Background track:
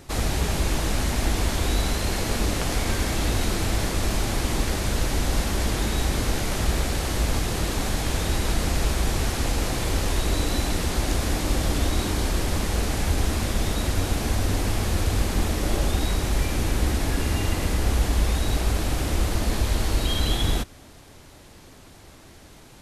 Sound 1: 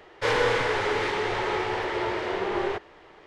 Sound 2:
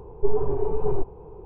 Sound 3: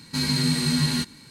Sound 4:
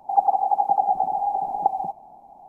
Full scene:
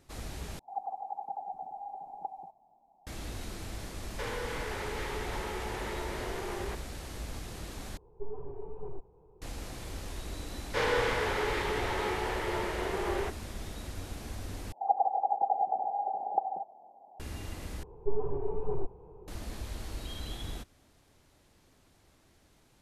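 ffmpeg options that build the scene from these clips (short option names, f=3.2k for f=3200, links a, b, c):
-filter_complex "[4:a]asplit=2[a][b];[1:a]asplit=2[c][d];[2:a]asplit=2[e][f];[0:a]volume=-16.5dB[g];[a]flanger=delay=0.6:depth=6.3:regen=-70:speed=1:shape=triangular[h];[c]acompressor=threshold=-27dB:ratio=6:attack=3.2:release=140:knee=1:detection=peak[i];[b]bandpass=f=520:t=q:w=2.2:csg=0[j];[g]asplit=5[k][l][m][n][o];[k]atrim=end=0.594[p];[h]atrim=end=2.48,asetpts=PTS-STARTPTS,volume=-14dB[q];[l]atrim=start=3.066:end=7.974[r];[e]atrim=end=1.45,asetpts=PTS-STARTPTS,volume=-17dB[s];[m]atrim=start=9.416:end=14.724[t];[j]atrim=end=2.48,asetpts=PTS-STARTPTS,volume=-2dB[u];[n]atrim=start=17.196:end=17.834[v];[f]atrim=end=1.45,asetpts=PTS-STARTPTS,volume=-8.5dB[w];[o]atrim=start=19.276[x];[i]atrim=end=3.26,asetpts=PTS-STARTPTS,volume=-7dB,afade=t=in:d=0.004:c=hsin,afade=t=out:st=3.256:d=0.004:c=hsin,adelay=175077S[y];[d]atrim=end=3.26,asetpts=PTS-STARTPTS,volume=-5.5dB,afade=t=in:d=0.004:c=hsin,afade=t=out:st=3.256:d=0.004:c=hsin,adelay=10520[z];[p][q]acrossfade=d=0.004:c1=hsin:c2=hsin[aa];[aa][r]acrossfade=d=0.004:c1=hsin:c2=hsin[ab];[ab][s]acrossfade=d=0.004:c1=hsin:c2=hsin[ac];[ac][t]acrossfade=d=0.004:c1=hsin:c2=hsin[ad];[ad][u]acrossfade=d=0.004:c1=hsin:c2=hsin[ae];[ae][v]acrossfade=d=0.004:c1=hsin:c2=hsin[af];[af][w]acrossfade=d=0.004:c1=hsin:c2=hsin[ag];[ag][x]acrossfade=d=0.004:c1=hsin:c2=hsin[ah];[ah][y][z]amix=inputs=3:normalize=0"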